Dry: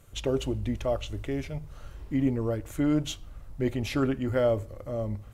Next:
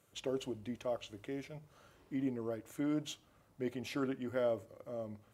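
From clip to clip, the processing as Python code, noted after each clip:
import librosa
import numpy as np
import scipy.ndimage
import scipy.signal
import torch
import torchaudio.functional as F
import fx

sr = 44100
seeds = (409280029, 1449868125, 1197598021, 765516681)

y = scipy.signal.sosfilt(scipy.signal.butter(2, 190.0, 'highpass', fs=sr, output='sos'), x)
y = y * 10.0 ** (-9.0 / 20.0)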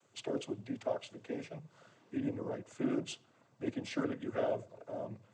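y = fx.noise_vocoder(x, sr, seeds[0], bands=16)
y = y * 10.0 ** (1.0 / 20.0)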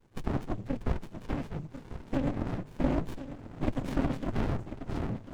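y = fx.recorder_agc(x, sr, target_db=-27.5, rise_db_per_s=10.0, max_gain_db=30)
y = y + 10.0 ** (-12.0 / 20.0) * np.pad(y, (int(1044 * sr / 1000.0), 0))[:len(y)]
y = fx.running_max(y, sr, window=65)
y = y * 10.0 ** (8.5 / 20.0)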